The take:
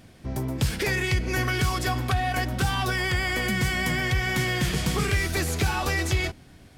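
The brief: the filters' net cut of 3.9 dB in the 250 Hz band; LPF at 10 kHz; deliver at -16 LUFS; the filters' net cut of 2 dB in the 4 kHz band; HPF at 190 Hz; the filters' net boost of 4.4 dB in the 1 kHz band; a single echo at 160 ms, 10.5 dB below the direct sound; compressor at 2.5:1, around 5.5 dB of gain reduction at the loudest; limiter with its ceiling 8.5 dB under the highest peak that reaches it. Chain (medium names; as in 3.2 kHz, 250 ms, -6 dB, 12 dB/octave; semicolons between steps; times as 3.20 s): high-pass 190 Hz; low-pass 10 kHz; peaking EQ 250 Hz -3.5 dB; peaking EQ 1 kHz +6.5 dB; peaking EQ 4 kHz -3 dB; compression 2.5:1, threshold -29 dBFS; peak limiter -25 dBFS; delay 160 ms -10.5 dB; trim +17 dB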